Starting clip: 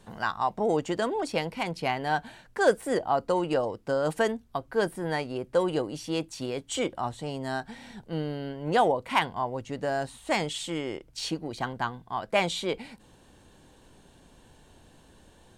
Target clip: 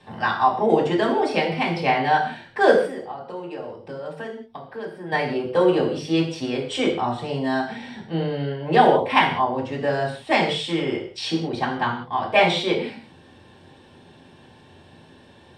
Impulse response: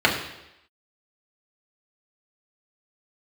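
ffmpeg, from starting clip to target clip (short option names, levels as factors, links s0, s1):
-filter_complex "[0:a]asettb=1/sr,asplit=3[s0][s1][s2];[s0]atrim=end=2.754[s3];[s1]atrim=start=2.75:end=5.12,asetpts=PTS-STARTPTS,afade=t=in:d=0.004:c=qsin,afade=t=out:st=2.366:d=0.004:c=qsin,acompressor=threshold=0.00708:ratio=3[s4];[s2]atrim=start=5.116[s5];[s3][s4]acrossfade=d=0.004:c1=hsin:c2=qsin[s6];[s6][s5]acrossfade=d=0.004:c1=qsin:c2=hsin[s7];[1:a]atrim=start_sample=2205,afade=t=out:st=0.28:d=0.01,atrim=end_sample=12789,asetrate=52920,aresample=44100[s8];[s7][s8]afir=irnorm=-1:irlink=0,volume=0.316"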